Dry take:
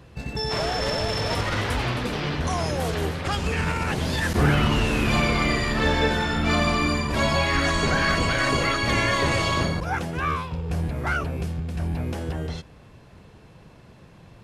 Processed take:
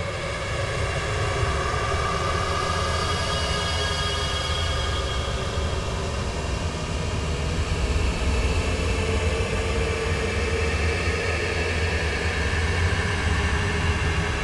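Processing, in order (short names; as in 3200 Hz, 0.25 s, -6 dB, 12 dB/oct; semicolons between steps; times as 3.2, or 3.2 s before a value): minimum comb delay 1.8 ms; steep low-pass 11000 Hz 72 dB/oct; Paulstretch 37×, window 0.10 s, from 3.24; gain +2 dB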